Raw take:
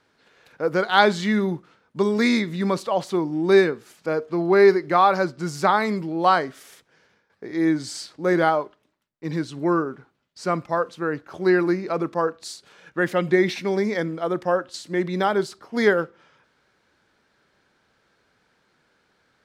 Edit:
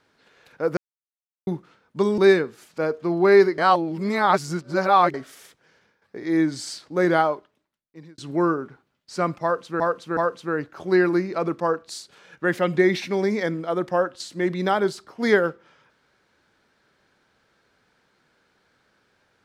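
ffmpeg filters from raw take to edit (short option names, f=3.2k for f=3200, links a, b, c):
-filter_complex "[0:a]asplit=9[a][b][c][d][e][f][g][h][i];[a]atrim=end=0.77,asetpts=PTS-STARTPTS,afade=t=out:st=0.766:d=0.004:c=hsin[j];[b]atrim=start=0.77:end=1.47,asetpts=PTS-STARTPTS,volume=0[k];[c]atrim=start=1.47:end=2.182,asetpts=PTS-STARTPTS,afade=t=in:d=0.004:c=hsin[l];[d]atrim=start=3.458:end=4.862[m];[e]atrim=start=4.858:end=6.422,asetpts=PTS-STARTPTS,areverse[n];[f]atrim=start=6.418:end=9.46,asetpts=PTS-STARTPTS,afade=t=out:st=2.112:d=0.93[o];[g]atrim=start=9.46:end=11.082,asetpts=PTS-STARTPTS,afade=t=in:d=0.004:c=hsin[p];[h]atrim=start=10.708:end=11.082[q];[i]atrim=start=10.708[r];[j][k][l]concat=n=3:v=0:a=1[s];[s][m]acrossfade=d=0.004:c1=hsin:c2=hsin[t];[t][n]acrossfade=d=0.004:c1=hsin:c2=hsin[u];[o][p]concat=n=2:v=0:a=1[v];[u][v]acrossfade=d=0.004:c1=hsin:c2=hsin[w];[w][q]acrossfade=d=0.004:c1=hsin:c2=hsin[x];[x][r]acrossfade=d=0.004:c1=hsin:c2=hsin"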